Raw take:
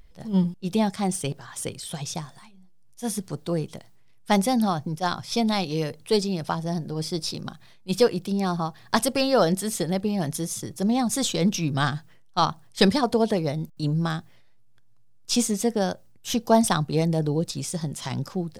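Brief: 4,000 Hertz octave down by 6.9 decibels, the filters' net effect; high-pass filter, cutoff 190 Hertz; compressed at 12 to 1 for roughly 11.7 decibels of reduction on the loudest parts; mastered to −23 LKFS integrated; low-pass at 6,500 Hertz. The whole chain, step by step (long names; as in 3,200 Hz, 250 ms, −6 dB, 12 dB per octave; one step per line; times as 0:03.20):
high-pass filter 190 Hz
low-pass filter 6,500 Hz
parametric band 4,000 Hz −8 dB
downward compressor 12 to 1, threshold −25 dBFS
level +9.5 dB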